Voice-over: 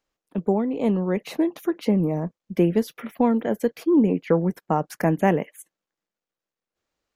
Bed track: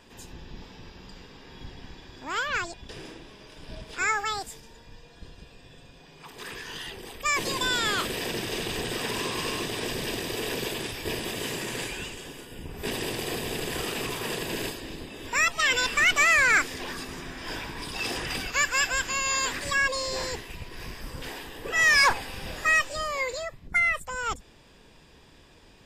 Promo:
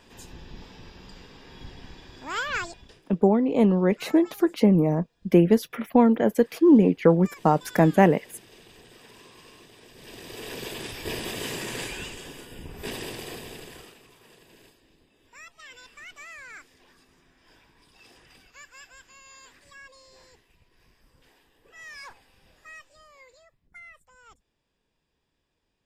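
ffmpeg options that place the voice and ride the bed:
ffmpeg -i stem1.wav -i stem2.wav -filter_complex "[0:a]adelay=2750,volume=2.5dB[link_01];[1:a]volume=19.5dB,afade=type=out:start_time=2.64:duration=0.37:silence=0.1,afade=type=in:start_time=9.93:duration=1.26:silence=0.1,afade=type=out:start_time=12.46:duration=1.53:silence=0.0707946[link_02];[link_01][link_02]amix=inputs=2:normalize=0" out.wav

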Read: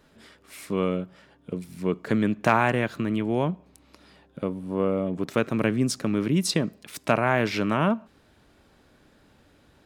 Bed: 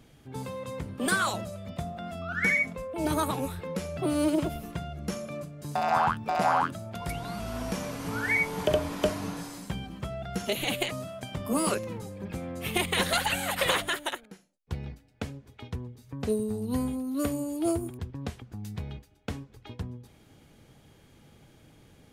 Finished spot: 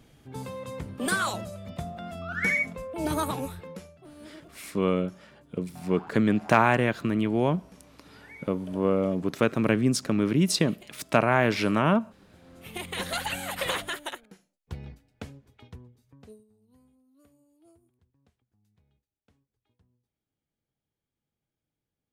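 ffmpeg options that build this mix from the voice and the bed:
ffmpeg -i stem1.wav -i stem2.wav -filter_complex "[0:a]adelay=4050,volume=0.5dB[link_01];[1:a]volume=18dB,afade=type=out:start_time=3.36:duration=0.61:silence=0.0841395,afade=type=in:start_time=12.38:duration=0.89:silence=0.11885,afade=type=out:start_time=15:duration=1.45:silence=0.0354813[link_02];[link_01][link_02]amix=inputs=2:normalize=0" out.wav

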